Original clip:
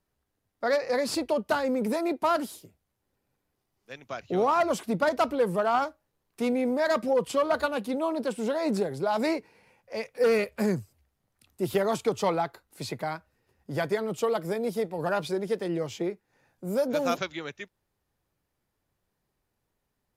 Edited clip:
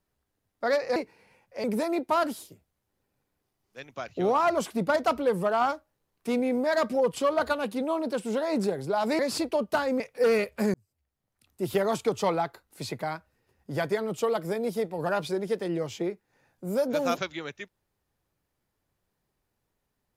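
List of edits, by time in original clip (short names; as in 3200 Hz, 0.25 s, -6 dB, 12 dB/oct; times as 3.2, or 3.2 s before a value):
0.96–1.77 swap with 9.32–10
10.74–11.78 fade in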